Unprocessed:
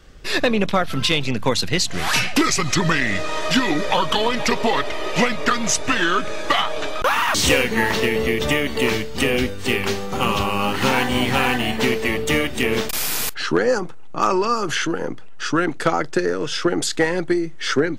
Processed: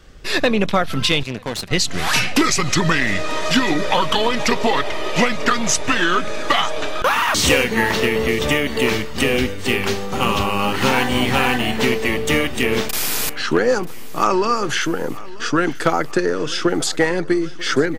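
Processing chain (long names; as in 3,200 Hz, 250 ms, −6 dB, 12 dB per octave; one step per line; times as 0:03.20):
repeating echo 940 ms, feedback 59%, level −20 dB
0:01.23–0:01.71: tube saturation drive 21 dB, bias 0.45
level +1.5 dB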